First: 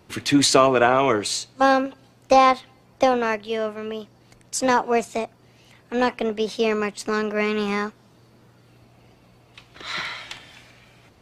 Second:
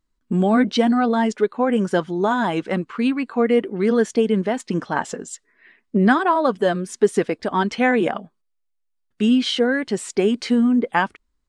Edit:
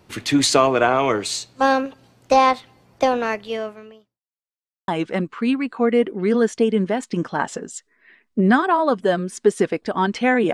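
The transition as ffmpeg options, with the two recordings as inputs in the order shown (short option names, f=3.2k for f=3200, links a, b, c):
-filter_complex "[0:a]apad=whole_dur=10.53,atrim=end=10.53,asplit=2[a][b];[a]atrim=end=4.22,asetpts=PTS-STARTPTS,afade=t=out:st=3.55:d=0.67:c=qua[c];[b]atrim=start=4.22:end=4.88,asetpts=PTS-STARTPTS,volume=0[d];[1:a]atrim=start=2.45:end=8.1,asetpts=PTS-STARTPTS,afade=t=in:d=0.004:c=hsin[e];[c][d][e]concat=n=3:v=0:a=1"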